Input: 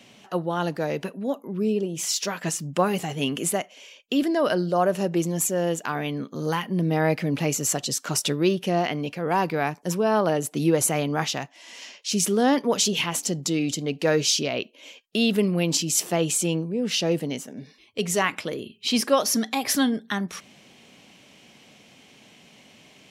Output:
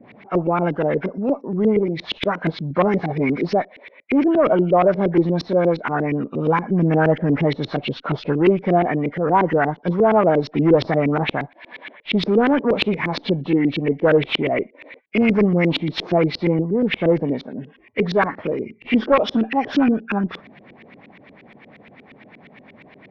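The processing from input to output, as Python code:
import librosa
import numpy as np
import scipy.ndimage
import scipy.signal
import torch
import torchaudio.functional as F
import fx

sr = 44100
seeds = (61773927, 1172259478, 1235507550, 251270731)

y = fx.freq_compress(x, sr, knee_hz=1300.0, ratio=1.5)
y = fx.cheby_harmonics(y, sr, harmonics=(2, 5, 8), levels_db=(-8, -13, -25), full_scale_db=-7.5)
y = fx.filter_lfo_lowpass(y, sr, shape='saw_up', hz=8.5, low_hz=310.0, high_hz=2900.0, q=1.7)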